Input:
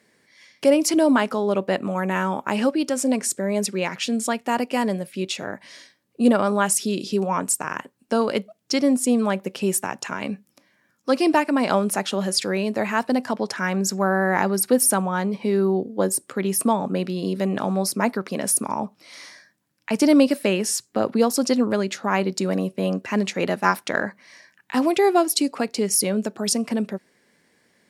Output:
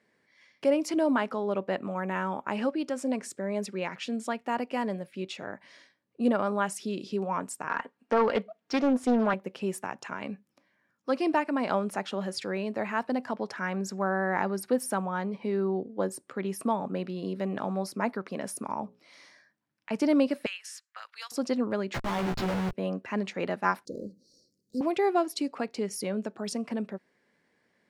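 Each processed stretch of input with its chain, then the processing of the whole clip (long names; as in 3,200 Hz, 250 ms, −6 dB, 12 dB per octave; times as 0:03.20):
0:07.68–0:09.34: comb filter 4.3 ms, depth 45% + mid-hump overdrive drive 16 dB, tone 1,900 Hz, clips at −6 dBFS + highs frequency-modulated by the lows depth 0.32 ms
0:18.81–0:19.90: dynamic equaliser 1,300 Hz, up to −5 dB, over −49 dBFS, Q 0.75 + mains-hum notches 60/120/180/240/300/360/420/480/540 Hz
0:20.46–0:21.32: high-pass filter 1,400 Hz 24 dB per octave + transient designer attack −4 dB, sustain −8 dB + multiband upward and downward compressor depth 100%
0:21.94–0:22.73: high shelf with overshoot 7,000 Hz −11 dB, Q 1.5 + comparator with hysteresis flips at −33.5 dBFS + double-tracking delay 16 ms −2.5 dB
0:23.85–0:24.81: mu-law and A-law mismatch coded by mu + Chebyshev band-stop filter 510–4,400 Hz, order 5 + mains-hum notches 60/120/180/240/300/360 Hz
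whole clip: low-pass filter 1,300 Hz 6 dB per octave; tilt shelving filter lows −3.5 dB, about 790 Hz; level −5.5 dB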